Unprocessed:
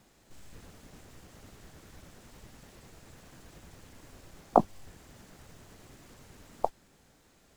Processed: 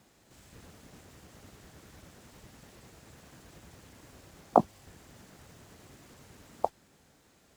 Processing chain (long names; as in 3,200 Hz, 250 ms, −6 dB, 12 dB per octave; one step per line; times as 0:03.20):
high-pass filter 54 Hz